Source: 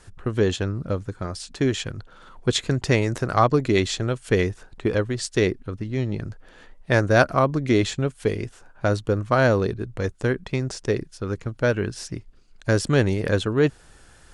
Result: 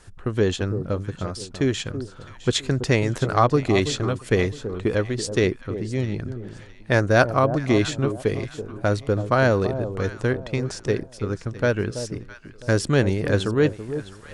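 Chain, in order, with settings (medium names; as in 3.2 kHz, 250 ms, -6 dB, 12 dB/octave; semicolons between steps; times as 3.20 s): echo whose repeats swap between lows and highs 330 ms, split 940 Hz, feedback 53%, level -10 dB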